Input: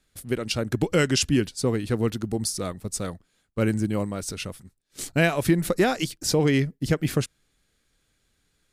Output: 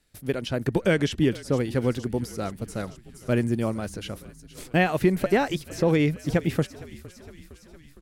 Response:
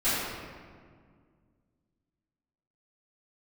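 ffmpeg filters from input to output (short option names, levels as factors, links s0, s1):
-filter_complex "[0:a]asetrate=48000,aresample=44100,asplit=7[s0][s1][s2][s3][s4][s5][s6];[s1]adelay=460,afreqshift=-39,volume=0.0944[s7];[s2]adelay=920,afreqshift=-78,volume=0.0617[s8];[s3]adelay=1380,afreqshift=-117,volume=0.0398[s9];[s4]adelay=1840,afreqshift=-156,volume=0.026[s10];[s5]adelay=2300,afreqshift=-195,volume=0.0168[s11];[s6]adelay=2760,afreqshift=-234,volume=0.011[s12];[s0][s7][s8][s9][s10][s11][s12]amix=inputs=7:normalize=0,acrossover=split=3100[s13][s14];[s14]acompressor=threshold=0.00794:ratio=4:attack=1:release=60[s15];[s13][s15]amix=inputs=2:normalize=0"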